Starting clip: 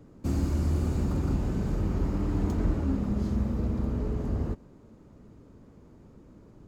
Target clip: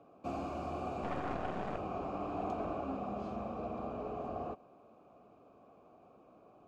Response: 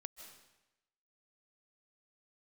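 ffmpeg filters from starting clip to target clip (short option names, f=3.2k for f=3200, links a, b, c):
-filter_complex "[0:a]asplit=3[a][b][c];[a]bandpass=f=730:t=q:w=8,volume=0dB[d];[b]bandpass=f=1.09k:t=q:w=8,volume=-6dB[e];[c]bandpass=f=2.44k:t=q:w=8,volume=-9dB[f];[d][e][f]amix=inputs=3:normalize=0,asettb=1/sr,asplit=3[g][h][i];[g]atrim=end=1.034[j];[h]atrim=start=1.03:end=1.78,asetpts=PTS-STARTPTS,afade=t=in:d=0.004:c=qsin,afade=t=out:st=0.746:d=0.004:c=qsin,aeval=exprs='0.0112*(cos(1*acos(clip(val(0)/0.0112,-1,1)))-cos(1*PI/2))+0.00282*(cos(4*acos(clip(val(0)/0.0112,-1,1)))-cos(4*PI/2))':c=same[k];[i]atrim=start=1.776[l];[j][k]acrossfade=d=0.004:c1=hsin:c2=qsin[m];[m][l]acrossfade=d=0.004:c1=qsin:c2=hsin,volume=11.5dB"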